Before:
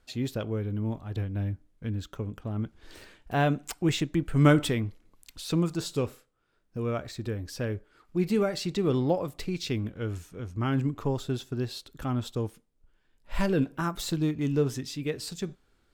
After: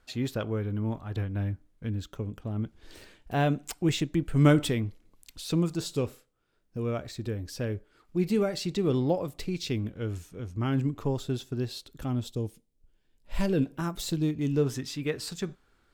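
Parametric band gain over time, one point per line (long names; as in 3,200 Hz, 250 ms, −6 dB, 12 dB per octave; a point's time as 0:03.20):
parametric band 1,300 Hz 1.5 octaves
0:01.44 +4 dB
0:02.14 −3.5 dB
0:11.92 −3.5 dB
0:12.40 −14.5 dB
0:13.54 −6 dB
0:14.44 −6 dB
0:14.86 +5 dB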